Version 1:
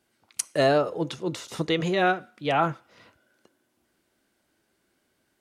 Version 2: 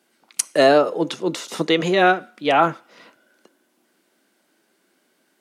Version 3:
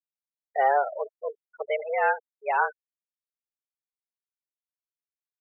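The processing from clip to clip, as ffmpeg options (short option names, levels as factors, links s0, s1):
-af "highpass=f=190:w=0.5412,highpass=f=190:w=1.3066,volume=2.24"
-af "highpass=f=330:t=q:w=0.5412,highpass=f=330:t=q:w=1.307,lowpass=f=2500:t=q:w=0.5176,lowpass=f=2500:t=q:w=0.7071,lowpass=f=2500:t=q:w=1.932,afreqshift=130,afftfilt=real='re*gte(hypot(re,im),0.141)':imag='im*gte(hypot(re,im),0.141)':win_size=1024:overlap=0.75,volume=0.422"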